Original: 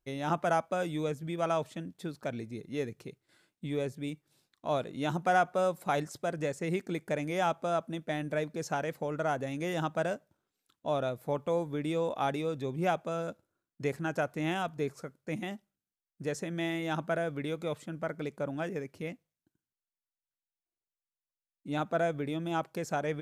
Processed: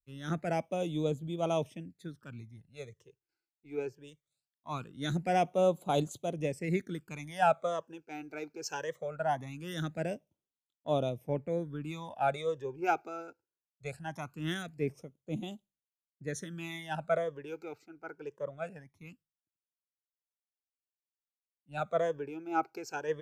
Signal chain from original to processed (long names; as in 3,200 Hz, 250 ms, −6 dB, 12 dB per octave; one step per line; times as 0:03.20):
all-pass phaser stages 12, 0.21 Hz, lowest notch 180–1,800 Hz
multiband upward and downward expander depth 100%